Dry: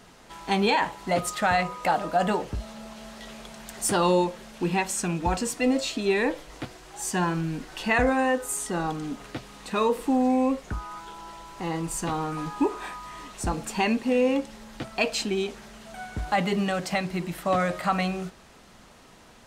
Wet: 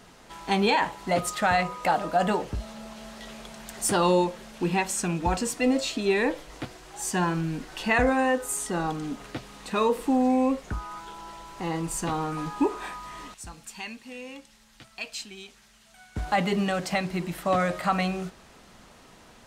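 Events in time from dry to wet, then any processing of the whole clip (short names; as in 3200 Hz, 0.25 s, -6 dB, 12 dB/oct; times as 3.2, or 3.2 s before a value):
13.34–16.16 passive tone stack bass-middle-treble 5-5-5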